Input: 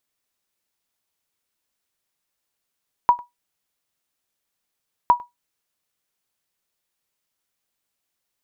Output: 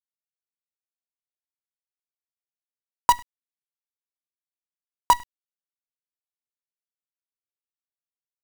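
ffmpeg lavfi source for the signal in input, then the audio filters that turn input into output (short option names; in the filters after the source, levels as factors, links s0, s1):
-f lavfi -i "aevalsrc='0.531*(sin(2*PI*968*mod(t,2.01))*exp(-6.91*mod(t,2.01)/0.16)+0.0668*sin(2*PI*968*max(mod(t,2.01)-0.1,0))*exp(-6.91*max(mod(t,2.01)-0.1,0)/0.16))':d=4.02:s=44100"
-af "highpass=f=89:p=1,bandreject=f=50:t=h:w=6,bandreject=f=100:t=h:w=6,bandreject=f=150:t=h:w=6,bandreject=f=200:t=h:w=6,bandreject=f=250:t=h:w=6,acrusher=bits=4:dc=4:mix=0:aa=0.000001"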